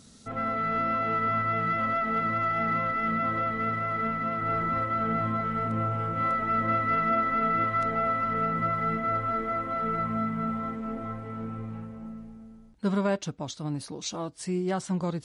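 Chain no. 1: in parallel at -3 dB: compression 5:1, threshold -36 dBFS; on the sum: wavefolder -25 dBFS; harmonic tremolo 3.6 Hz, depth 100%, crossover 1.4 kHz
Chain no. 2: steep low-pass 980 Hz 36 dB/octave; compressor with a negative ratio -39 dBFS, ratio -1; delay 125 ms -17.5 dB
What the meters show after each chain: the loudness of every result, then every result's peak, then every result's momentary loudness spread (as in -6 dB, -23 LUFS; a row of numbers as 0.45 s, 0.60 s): -34.5 LUFS, -39.0 LUFS; -23.5 dBFS, -24.0 dBFS; 5 LU, 7 LU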